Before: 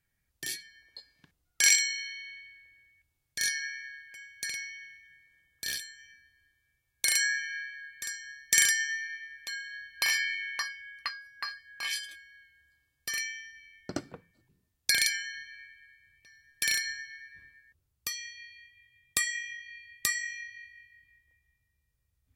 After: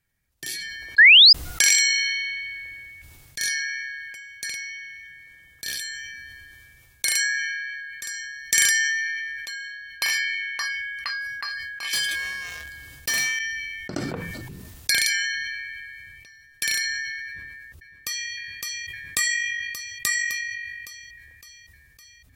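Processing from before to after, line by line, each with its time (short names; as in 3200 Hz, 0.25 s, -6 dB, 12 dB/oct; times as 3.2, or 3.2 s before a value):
0.98–1.33 painted sound rise 1600–5200 Hz -13 dBFS
11.93–13.39 sample leveller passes 3
17.25–18.3 echo throw 0.56 s, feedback 70%, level -2 dB
whole clip: sustainer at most 22 dB/s; gain +3 dB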